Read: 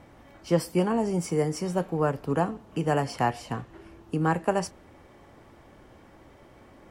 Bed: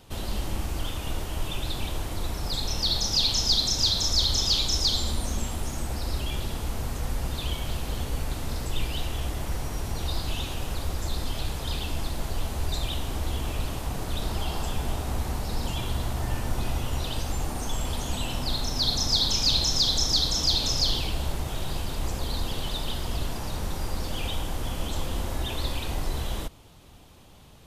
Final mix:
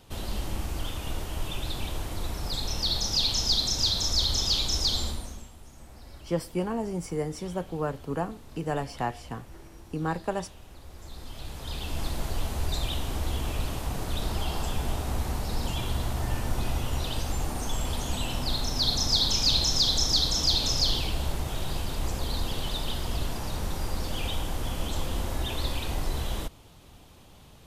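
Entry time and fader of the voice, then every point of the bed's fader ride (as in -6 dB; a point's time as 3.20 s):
5.80 s, -5.0 dB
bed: 5.04 s -2 dB
5.52 s -18 dB
10.79 s -18 dB
12.05 s -0.5 dB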